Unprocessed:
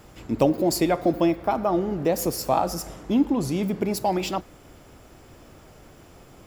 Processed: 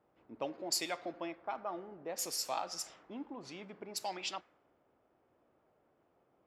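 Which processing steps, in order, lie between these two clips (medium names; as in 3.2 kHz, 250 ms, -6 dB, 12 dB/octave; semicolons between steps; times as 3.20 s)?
differentiator; level-controlled noise filter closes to 580 Hz, open at -29.5 dBFS; distance through air 86 m; trim +4 dB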